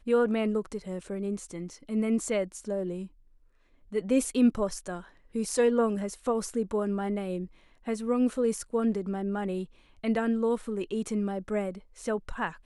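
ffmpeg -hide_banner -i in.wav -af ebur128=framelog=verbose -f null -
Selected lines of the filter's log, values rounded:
Integrated loudness:
  I:         -29.8 LUFS
  Threshold: -40.2 LUFS
Loudness range:
  LRA:         3.4 LU
  Threshold: -50.1 LUFS
  LRA low:   -31.9 LUFS
  LRA high:  -28.5 LUFS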